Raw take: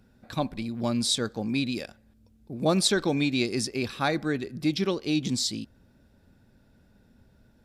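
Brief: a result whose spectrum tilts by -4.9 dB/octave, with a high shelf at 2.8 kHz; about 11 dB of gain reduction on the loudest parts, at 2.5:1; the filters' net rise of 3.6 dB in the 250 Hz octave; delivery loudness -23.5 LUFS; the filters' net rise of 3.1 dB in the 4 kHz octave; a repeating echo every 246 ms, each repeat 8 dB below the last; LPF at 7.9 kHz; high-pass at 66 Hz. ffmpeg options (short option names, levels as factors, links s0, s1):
-af "highpass=66,lowpass=7900,equalizer=f=250:t=o:g=4.5,highshelf=f=2800:g=-5,equalizer=f=4000:t=o:g=7.5,acompressor=threshold=0.02:ratio=2.5,aecho=1:1:246|492|738|984|1230:0.398|0.159|0.0637|0.0255|0.0102,volume=3.16"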